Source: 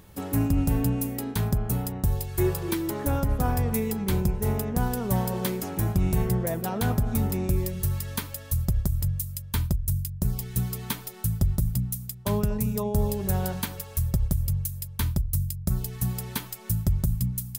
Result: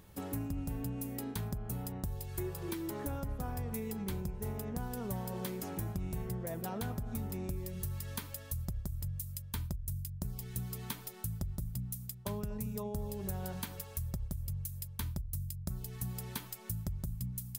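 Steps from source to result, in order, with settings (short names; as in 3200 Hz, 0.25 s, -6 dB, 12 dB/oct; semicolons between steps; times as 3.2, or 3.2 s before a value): compressor 4:1, threshold -29 dBFS, peak gain reduction 10 dB; gain -6.5 dB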